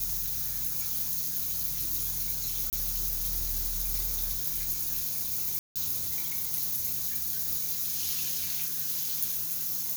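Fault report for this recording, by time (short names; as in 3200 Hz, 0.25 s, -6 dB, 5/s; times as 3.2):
2.7–2.73 gap 28 ms
5.59–5.76 gap 0.167 s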